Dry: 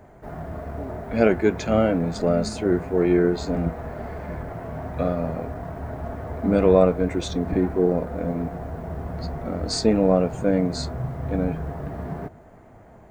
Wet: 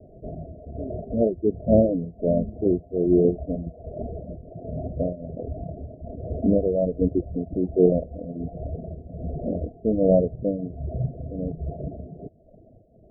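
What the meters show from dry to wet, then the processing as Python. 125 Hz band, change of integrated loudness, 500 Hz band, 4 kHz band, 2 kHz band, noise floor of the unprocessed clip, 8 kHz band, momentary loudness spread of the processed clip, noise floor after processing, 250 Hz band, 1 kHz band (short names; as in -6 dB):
-1.5 dB, -1.0 dB, -1.5 dB, under -40 dB, under -40 dB, -48 dBFS, under -40 dB, 18 LU, -52 dBFS, -1.5 dB, -9.5 dB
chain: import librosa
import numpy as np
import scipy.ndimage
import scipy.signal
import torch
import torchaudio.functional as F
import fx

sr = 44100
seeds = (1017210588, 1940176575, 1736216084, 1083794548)

y = fx.dereverb_blind(x, sr, rt60_s=0.87)
y = fx.tremolo_shape(y, sr, shape='triangle', hz=1.3, depth_pct=80)
y = scipy.signal.sosfilt(scipy.signal.butter(16, 680.0, 'lowpass', fs=sr, output='sos'), y)
y = y * 10.0 ** (5.0 / 20.0)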